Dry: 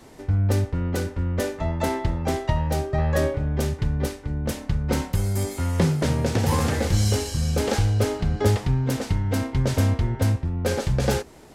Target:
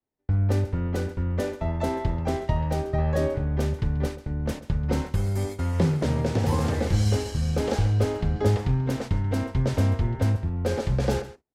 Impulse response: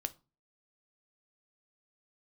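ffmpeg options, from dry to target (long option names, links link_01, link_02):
-filter_complex "[0:a]agate=range=-40dB:threshold=-31dB:ratio=16:detection=peak,aemphasis=mode=reproduction:type=cd,aecho=1:1:135:0.158,acrossover=split=370|1000|3000[link_01][link_02][link_03][link_04];[link_03]alimiter=level_in=9dB:limit=-24dB:level=0:latency=1,volume=-9dB[link_05];[link_01][link_02][link_05][link_04]amix=inputs=4:normalize=0,volume=-2dB"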